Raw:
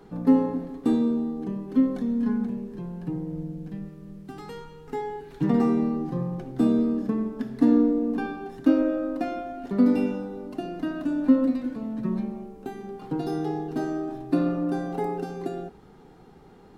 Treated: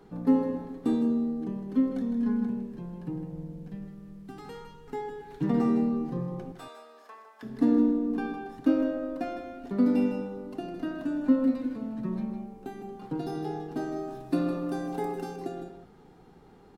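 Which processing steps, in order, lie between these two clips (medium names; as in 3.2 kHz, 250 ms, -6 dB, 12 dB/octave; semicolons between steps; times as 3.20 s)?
6.52–7.43 s: high-pass 790 Hz 24 dB/octave; 13.96–15.36 s: treble shelf 3.7 kHz +7.5 dB; delay 158 ms -9 dB; trim -4 dB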